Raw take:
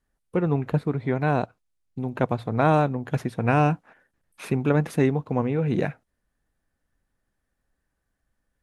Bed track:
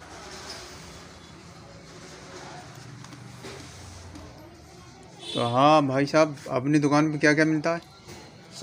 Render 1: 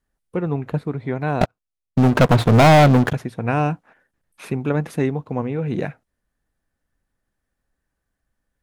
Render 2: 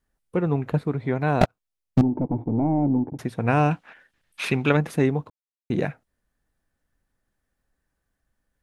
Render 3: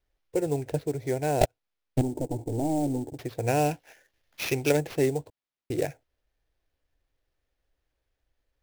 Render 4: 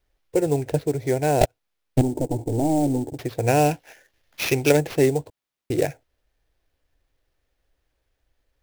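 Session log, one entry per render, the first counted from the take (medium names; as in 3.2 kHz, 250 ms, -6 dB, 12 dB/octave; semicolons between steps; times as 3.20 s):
1.41–3.13 s: waveshaping leveller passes 5
2.01–3.19 s: cascade formant filter u; 3.71–4.77 s: peaking EQ 3.1 kHz +13.5 dB 2.1 oct; 5.30–5.70 s: mute
static phaser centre 490 Hz, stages 4; sample-rate reducer 8.3 kHz, jitter 20%
trim +6 dB; peak limiter -3 dBFS, peak gain reduction 2.5 dB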